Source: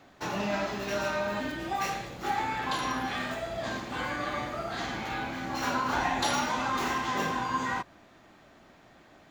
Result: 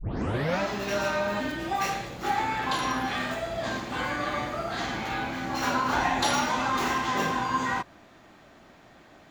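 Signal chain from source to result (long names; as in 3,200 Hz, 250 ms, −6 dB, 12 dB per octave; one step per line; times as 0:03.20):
turntable start at the beginning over 0.60 s
level +3 dB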